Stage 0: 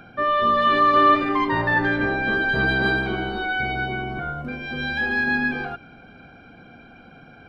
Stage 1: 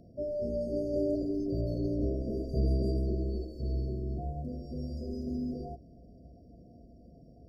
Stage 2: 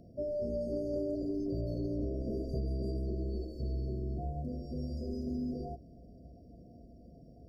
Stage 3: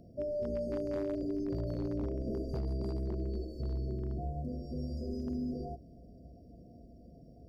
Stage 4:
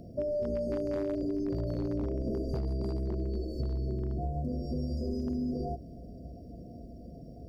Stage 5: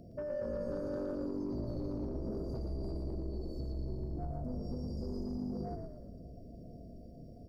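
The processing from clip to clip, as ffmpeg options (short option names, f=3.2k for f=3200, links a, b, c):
-af "afftfilt=real='re*(1-between(b*sr/4096,720,4300))':imag='im*(1-between(b*sr/4096,720,4300))':win_size=4096:overlap=0.75,equalizer=f=60:t=o:w=0.85:g=14.5,volume=-7.5dB"
-af "acompressor=threshold=-31dB:ratio=6"
-af "aeval=exprs='0.0398*(abs(mod(val(0)/0.0398+3,4)-2)-1)':c=same"
-af "acompressor=threshold=-37dB:ratio=6,volume=8dB"
-filter_complex "[0:a]asoftclip=type=tanh:threshold=-27dB,asplit=7[a][b][c][d][e][f][g];[b]adelay=115,afreqshift=-47,volume=-4.5dB[h];[c]adelay=230,afreqshift=-94,volume=-10.9dB[i];[d]adelay=345,afreqshift=-141,volume=-17.3dB[j];[e]adelay=460,afreqshift=-188,volume=-23.6dB[k];[f]adelay=575,afreqshift=-235,volume=-30dB[l];[g]adelay=690,afreqshift=-282,volume=-36.4dB[m];[a][h][i][j][k][l][m]amix=inputs=7:normalize=0,volume=-5.5dB"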